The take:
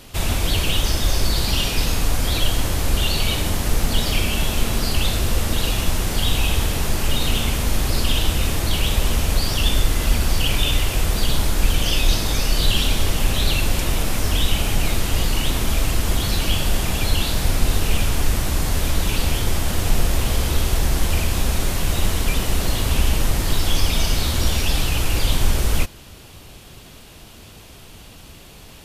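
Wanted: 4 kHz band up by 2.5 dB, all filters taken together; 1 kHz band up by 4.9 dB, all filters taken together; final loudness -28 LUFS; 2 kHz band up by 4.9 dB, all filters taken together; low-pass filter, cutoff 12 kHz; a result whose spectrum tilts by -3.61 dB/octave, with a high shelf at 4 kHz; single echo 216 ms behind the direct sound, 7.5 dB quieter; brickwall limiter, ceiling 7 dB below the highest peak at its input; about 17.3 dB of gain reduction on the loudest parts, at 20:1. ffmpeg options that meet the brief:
-af "lowpass=12000,equalizer=f=1000:t=o:g=5,equalizer=f=2000:t=o:g=5.5,highshelf=f=4000:g=-5.5,equalizer=f=4000:t=o:g=4,acompressor=threshold=0.0398:ratio=20,alimiter=level_in=1.26:limit=0.0631:level=0:latency=1,volume=0.794,aecho=1:1:216:0.422,volume=2.66"

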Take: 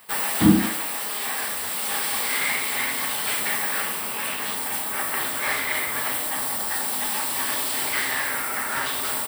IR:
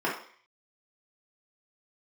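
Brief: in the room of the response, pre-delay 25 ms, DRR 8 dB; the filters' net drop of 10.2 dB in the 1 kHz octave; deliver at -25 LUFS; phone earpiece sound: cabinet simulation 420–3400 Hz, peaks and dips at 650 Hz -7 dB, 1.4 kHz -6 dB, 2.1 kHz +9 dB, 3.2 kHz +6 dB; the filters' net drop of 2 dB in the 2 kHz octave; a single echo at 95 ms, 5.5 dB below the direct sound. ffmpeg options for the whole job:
-filter_complex "[0:a]equalizer=f=1000:t=o:g=-8.5,equalizer=f=2000:t=o:g=-6,aecho=1:1:95:0.531,asplit=2[s0][s1];[1:a]atrim=start_sample=2205,adelay=25[s2];[s1][s2]afir=irnorm=-1:irlink=0,volume=0.1[s3];[s0][s3]amix=inputs=2:normalize=0,highpass=420,equalizer=f=650:t=q:w=4:g=-7,equalizer=f=1400:t=q:w=4:g=-6,equalizer=f=2100:t=q:w=4:g=9,equalizer=f=3200:t=q:w=4:g=6,lowpass=f=3400:w=0.5412,lowpass=f=3400:w=1.3066,volume=1.58"

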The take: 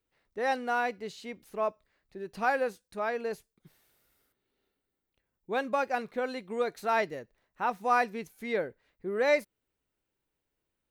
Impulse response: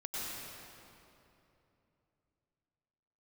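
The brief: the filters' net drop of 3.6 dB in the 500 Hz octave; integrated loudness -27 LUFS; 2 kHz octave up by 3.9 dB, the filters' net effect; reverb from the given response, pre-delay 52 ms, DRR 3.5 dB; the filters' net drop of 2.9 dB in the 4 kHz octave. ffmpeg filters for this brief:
-filter_complex "[0:a]equalizer=f=500:t=o:g=-4.5,equalizer=f=2000:t=o:g=6.5,equalizer=f=4000:t=o:g=-5.5,asplit=2[s0][s1];[1:a]atrim=start_sample=2205,adelay=52[s2];[s1][s2]afir=irnorm=-1:irlink=0,volume=0.473[s3];[s0][s3]amix=inputs=2:normalize=0,volume=1.5"

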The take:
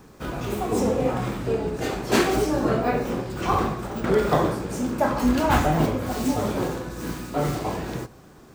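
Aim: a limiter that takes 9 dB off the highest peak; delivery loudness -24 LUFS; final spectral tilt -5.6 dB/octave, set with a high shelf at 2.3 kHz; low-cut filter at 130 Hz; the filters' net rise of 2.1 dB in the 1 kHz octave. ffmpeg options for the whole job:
-af "highpass=130,equalizer=f=1000:t=o:g=3.5,highshelf=f=2300:g=-4,volume=1.33,alimiter=limit=0.237:level=0:latency=1"

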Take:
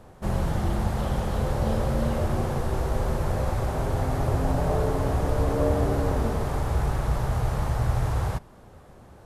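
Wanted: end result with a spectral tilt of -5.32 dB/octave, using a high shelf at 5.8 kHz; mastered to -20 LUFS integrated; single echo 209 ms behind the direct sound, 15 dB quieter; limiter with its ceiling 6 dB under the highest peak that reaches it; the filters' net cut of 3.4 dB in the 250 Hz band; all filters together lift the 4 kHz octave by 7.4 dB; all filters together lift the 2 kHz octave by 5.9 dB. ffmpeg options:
-af "equalizer=f=250:t=o:g=-5,equalizer=f=2000:t=o:g=6,equalizer=f=4000:t=o:g=4.5,highshelf=f=5800:g=8,alimiter=limit=0.133:level=0:latency=1,aecho=1:1:209:0.178,volume=2.51"

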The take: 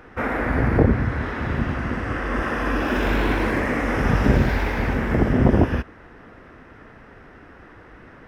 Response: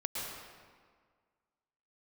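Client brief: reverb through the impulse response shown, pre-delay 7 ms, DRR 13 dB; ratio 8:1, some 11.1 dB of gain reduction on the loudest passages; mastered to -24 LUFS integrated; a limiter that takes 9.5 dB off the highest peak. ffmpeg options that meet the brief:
-filter_complex "[0:a]acompressor=threshold=0.0708:ratio=8,alimiter=limit=0.0631:level=0:latency=1,asplit=2[s0][s1];[1:a]atrim=start_sample=2205,adelay=7[s2];[s1][s2]afir=irnorm=-1:irlink=0,volume=0.15[s3];[s0][s3]amix=inputs=2:normalize=0,volume=2.82"

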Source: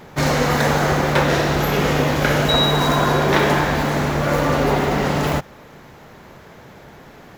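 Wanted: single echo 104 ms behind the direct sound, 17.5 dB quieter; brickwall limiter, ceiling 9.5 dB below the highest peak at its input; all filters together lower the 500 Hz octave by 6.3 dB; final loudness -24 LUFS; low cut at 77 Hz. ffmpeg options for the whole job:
-af "highpass=77,equalizer=f=500:t=o:g=-8,alimiter=limit=0.158:level=0:latency=1,aecho=1:1:104:0.133,volume=1.06"

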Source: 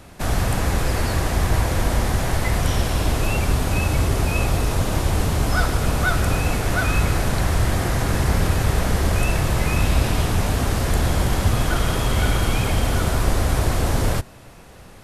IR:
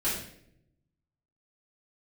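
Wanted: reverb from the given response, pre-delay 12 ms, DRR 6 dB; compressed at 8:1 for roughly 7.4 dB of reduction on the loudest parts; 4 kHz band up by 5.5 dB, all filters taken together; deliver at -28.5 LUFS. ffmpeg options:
-filter_complex "[0:a]equalizer=f=4000:t=o:g=7,acompressor=threshold=0.0891:ratio=8,asplit=2[s0][s1];[1:a]atrim=start_sample=2205,adelay=12[s2];[s1][s2]afir=irnorm=-1:irlink=0,volume=0.188[s3];[s0][s3]amix=inputs=2:normalize=0,volume=0.668"

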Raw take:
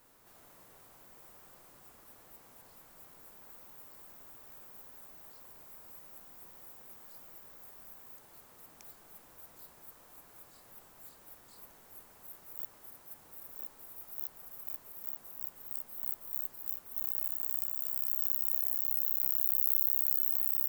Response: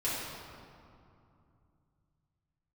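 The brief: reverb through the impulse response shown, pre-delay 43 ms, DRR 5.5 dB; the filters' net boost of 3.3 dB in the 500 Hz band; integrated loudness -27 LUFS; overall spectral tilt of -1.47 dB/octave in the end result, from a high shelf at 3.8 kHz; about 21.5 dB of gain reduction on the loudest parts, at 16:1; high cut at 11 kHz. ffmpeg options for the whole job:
-filter_complex "[0:a]lowpass=11000,equalizer=f=500:t=o:g=4,highshelf=f=3800:g=7,acompressor=threshold=0.00316:ratio=16,asplit=2[s0][s1];[1:a]atrim=start_sample=2205,adelay=43[s2];[s1][s2]afir=irnorm=-1:irlink=0,volume=0.237[s3];[s0][s3]amix=inputs=2:normalize=0,volume=22.4"

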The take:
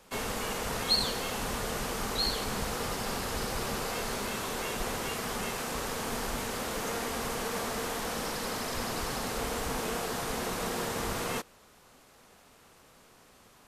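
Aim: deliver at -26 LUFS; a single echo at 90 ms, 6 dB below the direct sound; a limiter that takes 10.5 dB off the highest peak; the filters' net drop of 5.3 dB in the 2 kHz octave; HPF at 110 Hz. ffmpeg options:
-af "highpass=110,equalizer=f=2000:t=o:g=-7,alimiter=level_in=1.26:limit=0.0631:level=0:latency=1,volume=0.794,aecho=1:1:90:0.501,volume=2.66"

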